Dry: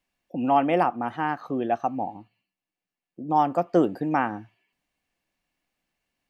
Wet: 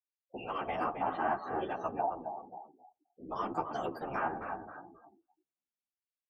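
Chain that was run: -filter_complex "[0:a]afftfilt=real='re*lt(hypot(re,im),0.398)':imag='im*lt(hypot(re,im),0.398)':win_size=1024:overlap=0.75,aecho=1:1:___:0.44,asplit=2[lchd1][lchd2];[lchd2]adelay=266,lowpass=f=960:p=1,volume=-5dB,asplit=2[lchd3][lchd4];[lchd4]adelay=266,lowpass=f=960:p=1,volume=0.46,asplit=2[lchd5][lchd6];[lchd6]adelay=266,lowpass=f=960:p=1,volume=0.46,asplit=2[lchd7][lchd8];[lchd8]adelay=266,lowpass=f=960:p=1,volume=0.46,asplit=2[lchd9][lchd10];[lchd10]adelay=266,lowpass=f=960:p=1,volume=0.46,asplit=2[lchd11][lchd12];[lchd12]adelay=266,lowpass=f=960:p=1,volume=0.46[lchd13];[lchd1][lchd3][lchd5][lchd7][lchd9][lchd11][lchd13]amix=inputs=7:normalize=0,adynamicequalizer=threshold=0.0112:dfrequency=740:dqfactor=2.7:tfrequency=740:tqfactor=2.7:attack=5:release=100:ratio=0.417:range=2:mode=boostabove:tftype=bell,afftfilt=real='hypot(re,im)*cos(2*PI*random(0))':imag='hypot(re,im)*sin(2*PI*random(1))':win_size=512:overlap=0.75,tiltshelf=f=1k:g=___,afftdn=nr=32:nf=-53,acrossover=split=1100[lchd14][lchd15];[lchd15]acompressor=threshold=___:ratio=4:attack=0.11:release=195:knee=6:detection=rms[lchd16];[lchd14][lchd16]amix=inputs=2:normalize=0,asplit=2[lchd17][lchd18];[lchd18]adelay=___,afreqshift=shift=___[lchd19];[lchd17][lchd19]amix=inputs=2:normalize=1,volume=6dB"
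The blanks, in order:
2.6, -9, -48dB, 11, -2.9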